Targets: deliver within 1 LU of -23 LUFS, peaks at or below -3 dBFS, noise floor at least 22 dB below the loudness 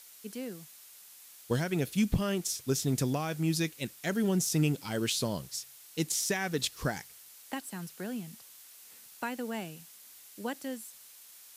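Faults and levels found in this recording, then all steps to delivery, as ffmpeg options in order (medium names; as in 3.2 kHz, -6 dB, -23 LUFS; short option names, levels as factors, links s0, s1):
noise floor -54 dBFS; noise floor target -55 dBFS; loudness -32.5 LUFS; peak level -16.5 dBFS; loudness target -23.0 LUFS
-> -af "afftdn=nr=6:nf=-54"
-af "volume=2.99"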